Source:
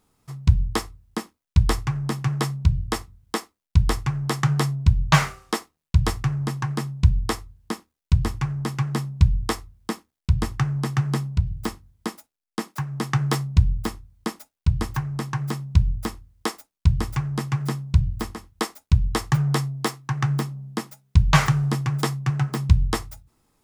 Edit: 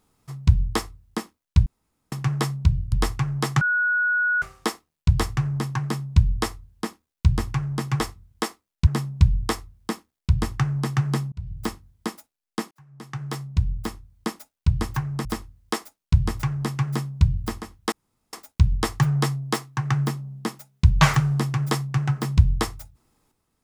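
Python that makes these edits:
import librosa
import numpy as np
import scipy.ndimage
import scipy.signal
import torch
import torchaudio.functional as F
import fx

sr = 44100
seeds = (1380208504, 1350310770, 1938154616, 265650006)

y = fx.edit(x, sr, fx.room_tone_fill(start_s=1.66, length_s=0.46),
    fx.move(start_s=2.92, length_s=0.87, to_s=8.87),
    fx.bleep(start_s=4.48, length_s=0.81, hz=1460.0, db=-18.5),
    fx.fade_in_span(start_s=11.32, length_s=0.33),
    fx.fade_in_span(start_s=12.71, length_s=1.57),
    fx.cut(start_s=15.25, length_s=0.73),
    fx.insert_room_tone(at_s=18.65, length_s=0.41), tone=tone)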